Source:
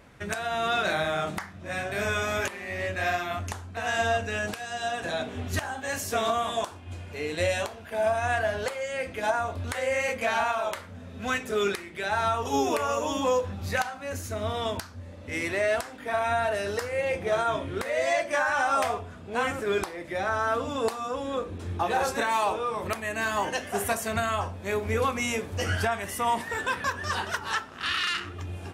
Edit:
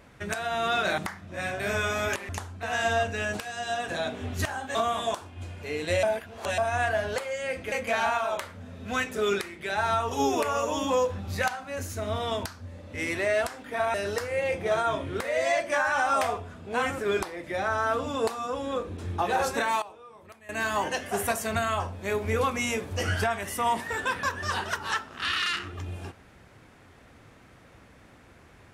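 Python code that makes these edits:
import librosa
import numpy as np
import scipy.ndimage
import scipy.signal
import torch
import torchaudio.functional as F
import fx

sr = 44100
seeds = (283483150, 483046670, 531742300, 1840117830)

y = fx.edit(x, sr, fx.cut(start_s=0.98, length_s=0.32),
    fx.cut(start_s=2.61, length_s=0.82),
    fx.cut(start_s=5.89, length_s=0.36),
    fx.reverse_span(start_s=7.53, length_s=0.55),
    fx.cut(start_s=9.22, length_s=0.84),
    fx.cut(start_s=16.28, length_s=0.27),
    fx.fade_down_up(start_s=22.17, length_s=1.19, db=-19.0, fade_s=0.26, curve='log'), tone=tone)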